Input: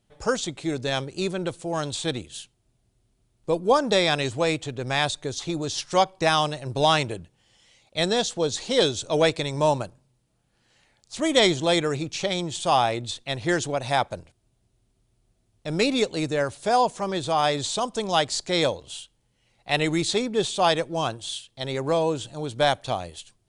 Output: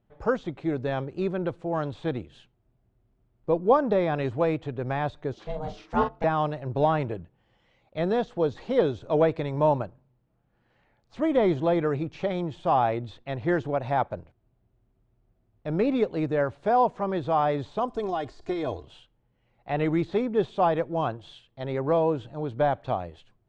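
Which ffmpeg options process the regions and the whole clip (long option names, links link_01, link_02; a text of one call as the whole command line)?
ffmpeg -i in.wav -filter_complex "[0:a]asettb=1/sr,asplit=3[link_01][link_02][link_03];[link_01]atrim=end=5.334[link_04];[link_02]atrim=start=5.33:end=6.24,asetpts=PTS-STARTPTS,afade=type=in:duration=0.004:curve=qsin,afade=type=out:start_time=0.906:duration=0.004:curve=qsin,bandreject=frequency=60:width_type=h:width=6,bandreject=frequency=120:width_type=h:width=6,bandreject=frequency=180:width_type=h:width=6,bandreject=frequency=240:width_type=h:width=6,bandreject=frequency=300:width_type=h:width=6,bandreject=frequency=360:width_type=h:width=6,bandreject=frequency=420:width_type=h:width=6,aeval=exprs='val(0)*sin(2*PI*320*n/s)':channel_layout=same,asplit=2[link_05][link_06];[link_06]adelay=43,volume=-8dB[link_07];[link_05][link_07]amix=inputs=2:normalize=0,atrim=end_sample=40131[link_08];[link_03]atrim=start=6.236[link_09];[link_04][link_08]acrossfade=duration=0.004:curve1=hsin:curve2=qsin[link_10];[link_10][link_09]acrossfade=duration=0.004:curve1=qsin:curve2=hsin,asettb=1/sr,asplit=3[link_11][link_12][link_13];[link_11]atrim=end=17.884[link_14];[link_12]atrim=start=17.88:end=18.85,asetpts=PTS-STARTPTS,afade=type=in:duration=0.004:curve=qsin,afade=type=out:start_time=0.966:duration=0.004:curve=qsin,bass=frequency=250:gain=3,treble=frequency=4000:gain=12,aecho=1:1:2.8:0.69,atrim=end_sample=42777,acompressor=threshold=-21dB:ratio=4:attack=3.2:release=140:knee=1:detection=peak[link_15];[link_13]atrim=start=18.846[link_16];[link_14][link_15]acrossfade=duration=0.004:curve1=hsin:curve2=qsin[link_17];[link_17][link_16]acrossfade=duration=0.004:curve1=qsin:curve2=hsin,deesser=0.7,lowpass=1600" out.wav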